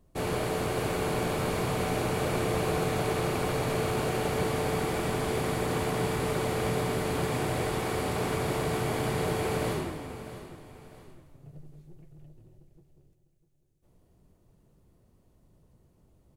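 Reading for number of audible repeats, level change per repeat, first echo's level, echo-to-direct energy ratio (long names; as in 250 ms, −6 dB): 2, −8.0 dB, −14.0 dB, −13.5 dB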